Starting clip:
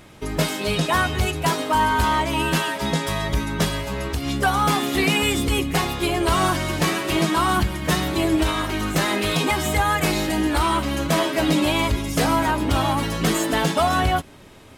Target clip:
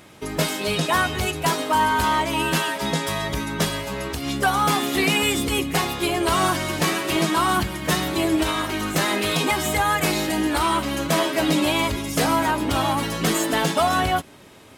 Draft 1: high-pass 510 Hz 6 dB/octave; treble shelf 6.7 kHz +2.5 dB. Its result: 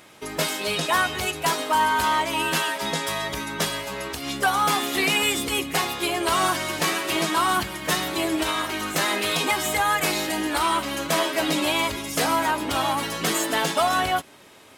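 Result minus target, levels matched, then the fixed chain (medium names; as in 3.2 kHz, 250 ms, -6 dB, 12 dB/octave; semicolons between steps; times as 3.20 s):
125 Hz band -7.0 dB
high-pass 140 Hz 6 dB/octave; treble shelf 6.7 kHz +2.5 dB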